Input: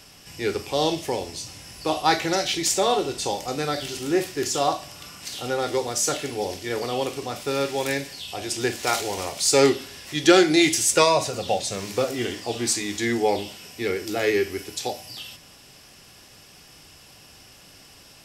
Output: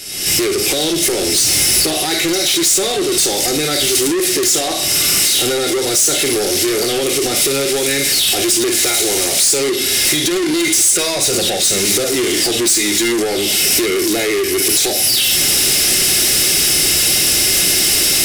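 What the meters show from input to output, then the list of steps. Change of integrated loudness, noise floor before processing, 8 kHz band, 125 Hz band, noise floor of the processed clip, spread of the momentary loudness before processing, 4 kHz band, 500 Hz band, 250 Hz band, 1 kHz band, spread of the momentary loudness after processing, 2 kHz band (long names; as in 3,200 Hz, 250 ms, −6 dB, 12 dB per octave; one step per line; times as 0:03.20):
+11.0 dB, −50 dBFS, +16.5 dB, +5.5 dB, −18 dBFS, 15 LU, +15.0 dB, +5.5 dB, +7.0 dB, 0.0 dB, 4 LU, +9.5 dB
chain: camcorder AGC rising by 57 dB per second
hollow resonant body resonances 360/2,100/3,800 Hz, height 11 dB
in parallel at −11 dB: sine wavefolder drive 10 dB, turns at −0.5 dBFS
on the sum: brickwall limiter −7.5 dBFS, peak gain reduction 12 dB
high-shelf EQ 2,300 Hz +10 dB
on a send: flutter between parallel walls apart 9 metres, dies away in 0.21 s
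on the sum: soft clipping −13.5 dBFS, distortion −9 dB
graphic EQ with 15 bands 100 Hz −4 dB, 1,000 Hz −9 dB, 10,000 Hz +7 dB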